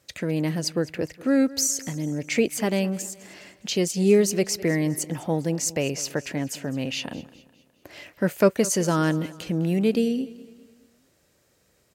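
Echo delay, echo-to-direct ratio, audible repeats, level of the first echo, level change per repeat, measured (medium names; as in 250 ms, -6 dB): 206 ms, -18.0 dB, 3, -19.0 dB, -7.0 dB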